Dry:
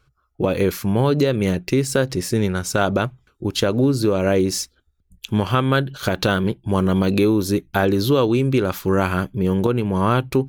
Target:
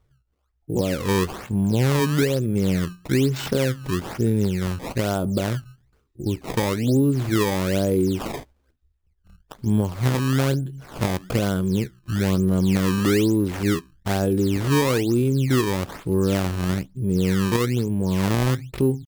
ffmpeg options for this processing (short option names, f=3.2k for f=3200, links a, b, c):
-af "equalizer=f=1.8k:w=0.38:g=-12.5,atempo=0.55,acrusher=samples=18:mix=1:aa=0.000001:lfo=1:lforange=28.8:lforate=1.1"